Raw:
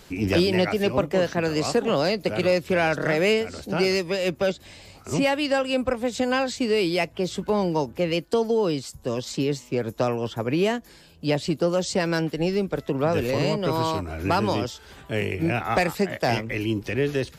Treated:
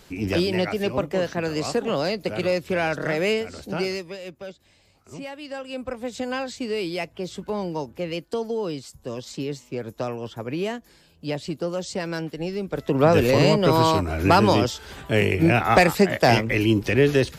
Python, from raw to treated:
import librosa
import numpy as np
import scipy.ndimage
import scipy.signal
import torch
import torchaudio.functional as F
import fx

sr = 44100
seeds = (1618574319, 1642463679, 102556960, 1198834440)

y = fx.gain(x, sr, db=fx.line((3.73, -2.0), (4.33, -14.0), (5.33, -14.0), (6.05, -5.0), (12.59, -5.0), (13.02, 6.0)))